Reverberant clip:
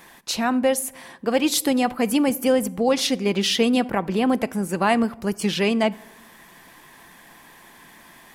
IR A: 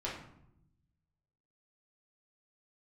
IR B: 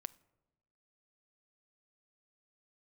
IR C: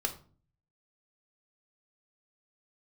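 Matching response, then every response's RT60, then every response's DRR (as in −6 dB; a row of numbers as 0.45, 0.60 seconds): B; 0.80, 1.0, 0.40 seconds; −7.0, 16.0, 5.0 decibels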